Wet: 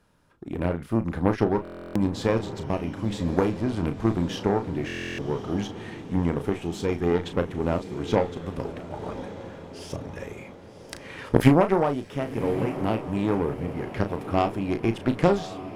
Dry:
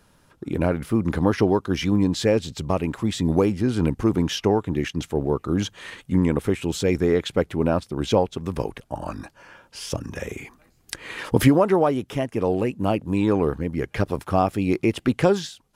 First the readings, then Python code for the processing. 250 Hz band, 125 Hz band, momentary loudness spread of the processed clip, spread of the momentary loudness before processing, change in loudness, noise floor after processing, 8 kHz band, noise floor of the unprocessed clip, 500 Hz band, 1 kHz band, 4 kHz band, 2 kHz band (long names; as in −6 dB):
−3.5 dB, −3.0 dB, 14 LU, 13 LU, −3.5 dB, −45 dBFS, −9.5 dB, −60 dBFS, −3.5 dB, −2.0 dB, −7.0 dB, −3.0 dB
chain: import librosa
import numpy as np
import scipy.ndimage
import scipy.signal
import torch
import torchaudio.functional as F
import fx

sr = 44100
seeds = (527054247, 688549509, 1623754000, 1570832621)

y = fx.cheby_harmonics(x, sr, harmonics=(3, 4), levels_db=(-14, -21), full_scale_db=-4.0)
y = fx.high_shelf(y, sr, hz=3800.0, db=-6.5)
y = fx.doubler(y, sr, ms=35.0, db=-9.0)
y = fx.echo_diffused(y, sr, ms=1099, feedback_pct=53, wet_db=-12)
y = fx.buffer_glitch(y, sr, at_s=(1.63, 4.86), block=1024, repeats=13)
y = y * librosa.db_to_amplitude(2.0)